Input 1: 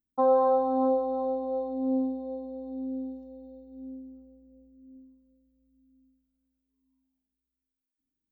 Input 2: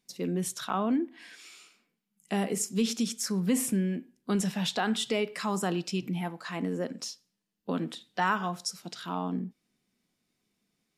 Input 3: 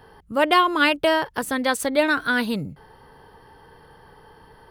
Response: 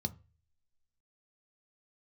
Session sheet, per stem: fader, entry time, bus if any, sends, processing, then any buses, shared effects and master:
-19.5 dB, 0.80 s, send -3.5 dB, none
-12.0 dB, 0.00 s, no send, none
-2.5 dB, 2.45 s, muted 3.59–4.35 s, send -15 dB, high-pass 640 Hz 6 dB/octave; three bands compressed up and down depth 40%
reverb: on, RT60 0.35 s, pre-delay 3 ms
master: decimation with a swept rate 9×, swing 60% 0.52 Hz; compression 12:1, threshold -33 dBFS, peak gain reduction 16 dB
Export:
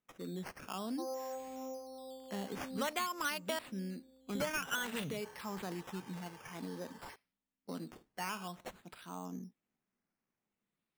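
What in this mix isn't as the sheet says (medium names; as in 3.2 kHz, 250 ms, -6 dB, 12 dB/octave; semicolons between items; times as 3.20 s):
stem 1: send off; stem 3: missing three bands compressed up and down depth 40%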